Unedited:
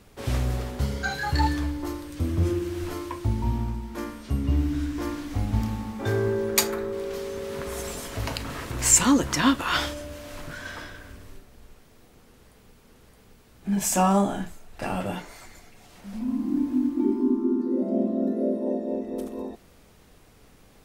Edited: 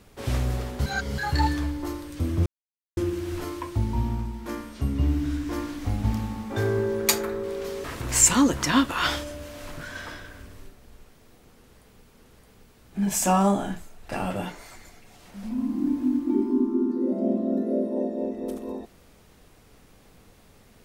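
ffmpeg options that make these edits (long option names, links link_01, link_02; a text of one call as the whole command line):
ffmpeg -i in.wav -filter_complex "[0:a]asplit=5[link_01][link_02][link_03][link_04][link_05];[link_01]atrim=end=0.862[link_06];[link_02]atrim=start=0.858:end=1.182,asetpts=PTS-STARTPTS,areverse[link_07];[link_03]atrim=start=1.178:end=2.46,asetpts=PTS-STARTPTS,afade=type=out:start_time=1.278:duration=0.004:curve=hsin,apad=pad_dur=0.51[link_08];[link_04]atrim=start=2.46:end=7.332,asetpts=PTS-STARTPTS,afade=type=in:duration=0.004:curve=hsin[link_09];[link_05]atrim=start=8.538[link_10];[link_06][link_07]acrossfade=duration=0.004:curve1=hsin:curve2=hsin[link_11];[link_08][link_09]concat=n=2:v=0:a=1[link_12];[link_11][link_12]acrossfade=duration=0.004:curve1=hsin:curve2=hsin[link_13];[link_13][link_10]acrossfade=duration=0.004:curve1=hsin:curve2=hsin" out.wav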